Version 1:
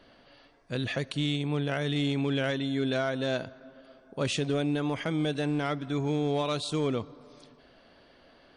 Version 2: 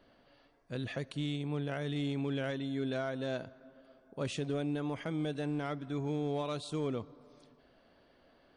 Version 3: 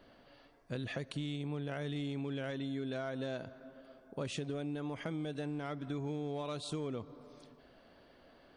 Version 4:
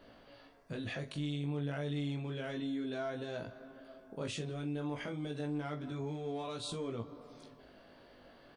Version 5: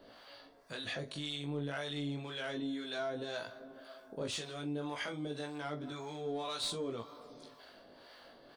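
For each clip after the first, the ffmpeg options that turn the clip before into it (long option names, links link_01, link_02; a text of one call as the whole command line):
ffmpeg -i in.wav -af "equalizer=frequency=4100:width=0.43:gain=-4.5,volume=-6dB" out.wav
ffmpeg -i in.wav -af "acompressor=threshold=-39dB:ratio=6,volume=3.5dB" out.wav
ffmpeg -i in.wav -filter_complex "[0:a]alimiter=level_in=10dB:limit=-24dB:level=0:latency=1:release=34,volume=-10dB,flanger=delay=17.5:depth=3.2:speed=0.29,asplit=2[link_01][link_02];[link_02]adelay=43,volume=-13.5dB[link_03];[link_01][link_03]amix=inputs=2:normalize=0,volume=5.5dB" out.wav
ffmpeg -i in.wav -filter_complex "[0:a]aexciter=amount=2.2:drive=7.3:freq=3600,acrossover=split=660[link_01][link_02];[link_01]aeval=exprs='val(0)*(1-0.7/2+0.7/2*cos(2*PI*1.9*n/s))':channel_layout=same[link_03];[link_02]aeval=exprs='val(0)*(1-0.7/2-0.7/2*cos(2*PI*1.9*n/s))':channel_layout=same[link_04];[link_03][link_04]amix=inputs=2:normalize=0,asplit=2[link_05][link_06];[link_06]highpass=frequency=720:poles=1,volume=12dB,asoftclip=type=tanh:threshold=-24.5dB[link_07];[link_05][link_07]amix=inputs=2:normalize=0,lowpass=frequency=2700:poles=1,volume=-6dB,volume=1dB" out.wav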